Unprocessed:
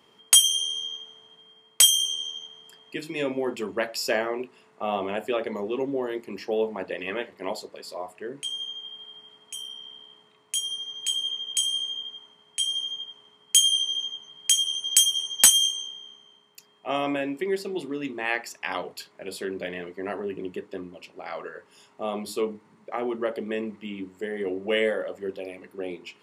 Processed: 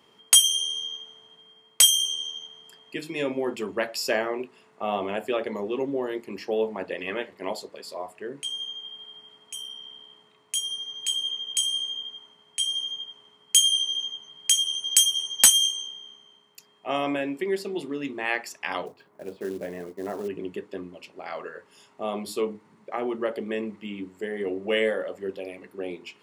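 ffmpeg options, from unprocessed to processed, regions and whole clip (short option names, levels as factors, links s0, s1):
-filter_complex "[0:a]asettb=1/sr,asplit=3[s0][s1][s2];[s0]atrim=end=18.864[s3];[s1]atrim=start=18.86:end=20.28,asetpts=PTS-STARTPTS,afade=t=in:d=0.004:c=qsin,afade=t=out:st=1.416:d=0.004:c=qsin,lowpass=1200,acrusher=bits=5:mode=log:mix=0:aa=0.000001[s4];[s2]atrim=start=20.276[s5];[s3][s4]acrossfade=d=0.004:c1=hsin:c2=qsin[s6];[s6][s5]acrossfade=d=0.004:c1=qsin:c2=hsin"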